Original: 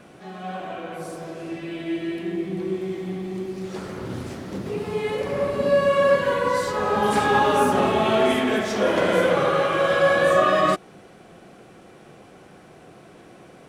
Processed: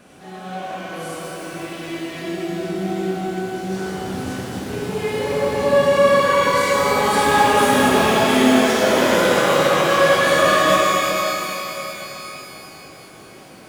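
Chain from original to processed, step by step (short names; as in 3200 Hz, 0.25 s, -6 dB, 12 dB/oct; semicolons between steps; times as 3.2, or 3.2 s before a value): high shelf 4900 Hz +8 dB; shimmer reverb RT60 3.5 s, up +12 st, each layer -8 dB, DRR -5 dB; gain -2.5 dB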